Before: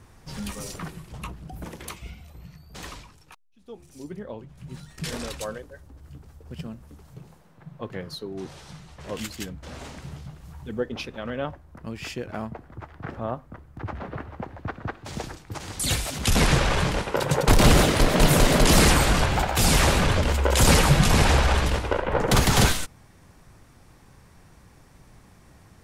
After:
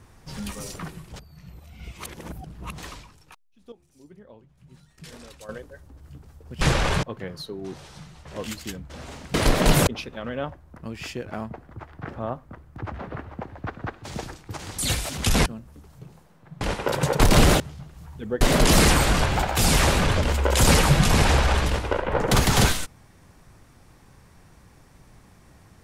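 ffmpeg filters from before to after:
-filter_complex "[0:a]asplit=13[a][b][c][d][e][f][g][h][i][j][k][l][m];[a]atrim=end=1.162[n];[b]atrim=start=1.158:end=2.782,asetpts=PTS-STARTPTS,areverse[o];[c]atrim=start=2.778:end=3.722[p];[d]atrim=start=3.718:end=5.492,asetpts=PTS-STARTPTS,volume=-11.5dB[q];[e]atrim=start=5.488:end=6.612[r];[f]atrim=start=16.468:end=16.892[s];[g]atrim=start=7.758:end=10.072[t];[h]atrim=start=17.878:end=18.412[u];[i]atrim=start=10.878:end=16.472[v];[j]atrim=start=6.608:end=7.762[w];[k]atrim=start=16.888:end=17.882[x];[l]atrim=start=10.068:end=10.882[y];[m]atrim=start=18.408[z];[n][o]acrossfade=d=0.004:c1=hsin:c2=hsin[aa];[aa][p]acrossfade=d=0.004:c1=hsin:c2=hsin[ab];[ab][q]acrossfade=d=0.004:c1=hsin:c2=hsin[ac];[ac][r]acrossfade=d=0.004:c1=hsin:c2=hsin[ad];[ad][s]acrossfade=d=0.004:c1=hsin:c2=hsin[ae];[ae][t]acrossfade=d=0.004:c1=hsin:c2=hsin[af];[af][u]acrossfade=d=0.004:c1=hsin:c2=hsin[ag];[ag][v]acrossfade=d=0.004:c1=hsin:c2=hsin[ah];[ah][w]acrossfade=d=0.004:c1=hsin:c2=hsin[ai];[ai][x]acrossfade=d=0.004:c1=hsin:c2=hsin[aj];[aj][y]acrossfade=d=0.004:c1=hsin:c2=hsin[ak];[ak][z]acrossfade=d=0.004:c1=hsin:c2=hsin"

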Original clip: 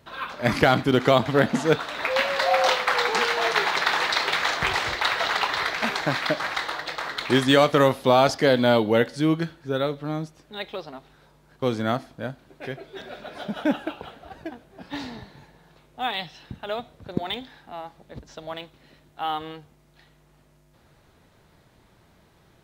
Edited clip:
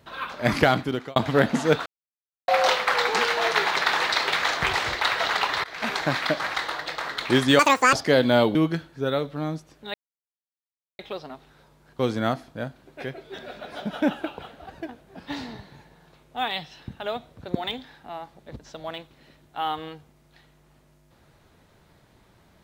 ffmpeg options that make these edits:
-filter_complex "[0:a]asplit=9[a][b][c][d][e][f][g][h][i];[a]atrim=end=1.16,asetpts=PTS-STARTPTS,afade=t=out:st=0.62:d=0.54[j];[b]atrim=start=1.16:end=1.86,asetpts=PTS-STARTPTS,afade=t=in:d=0.004:c=hsin,afade=t=out:st=0.696:d=0.004:c=hsin[k];[c]atrim=start=1.86:end=2.48,asetpts=PTS-STARTPTS,volume=0[l];[d]atrim=start=2.48:end=5.64,asetpts=PTS-STARTPTS,afade=t=in:d=0.004:c=hsin,afade=t=out:st=3.156:d=0.004:c=hsin:silence=0.0749894[m];[e]atrim=start=5.64:end=7.594,asetpts=PTS-STARTPTS,afade=t=in:d=0.3:silence=0.0749894[n];[f]atrim=start=7.59:end=8.27,asetpts=PTS-STARTPTS,asetrate=88200,aresample=44100[o];[g]atrim=start=8.266:end=8.892[p];[h]atrim=start=9.228:end=10.62,asetpts=PTS-STARTPTS,afade=t=out:st=1.388:d=0.004:c=hsin,apad=pad_dur=1.05[q];[i]atrim=start=10.62,asetpts=PTS-STARTPTS,afade=t=in:d=0.004:c=hsin[r];[j][k][l][m][n]concat=n=5:v=0:a=1[s];[s][o]acrossfade=d=0.004:c1=hsin:c2=hsin[t];[t][p]acrossfade=d=0.004:c1=hsin:c2=hsin[u];[q][r]concat=n=2:v=0:a=1[v];[u][v]acrossfade=d=0.004:c1=hsin:c2=hsin"

